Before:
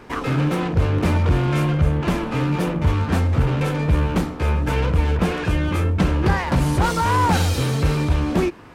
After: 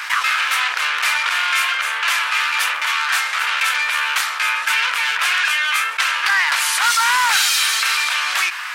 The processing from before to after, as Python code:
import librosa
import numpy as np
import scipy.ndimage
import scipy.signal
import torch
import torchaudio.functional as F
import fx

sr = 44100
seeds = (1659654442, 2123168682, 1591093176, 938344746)

p1 = scipy.signal.sosfilt(scipy.signal.butter(4, 1400.0, 'highpass', fs=sr, output='sos'), x)
p2 = np.clip(10.0 ** (25.5 / 20.0) * p1, -1.0, 1.0) / 10.0 ** (25.5 / 20.0)
p3 = p1 + (p2 * librosa.db_to_amplitude(-5.5))
p4 = fx.env_flatten(p3, sr, amount_pct=50)
y = p4 * librosa.db_to_amplitude(8.0)